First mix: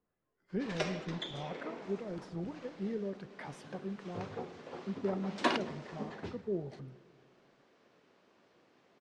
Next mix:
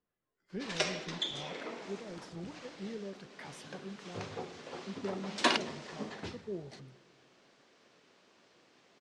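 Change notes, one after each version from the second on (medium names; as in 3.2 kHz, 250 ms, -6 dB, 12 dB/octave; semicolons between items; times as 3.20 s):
speech -5.0 dB; master: add treble shelf 2.6 kHz +11.5 dB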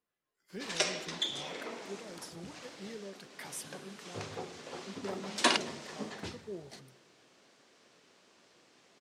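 speech: add tilt EQ +2 dB/octave; master: remove distance through air 71 m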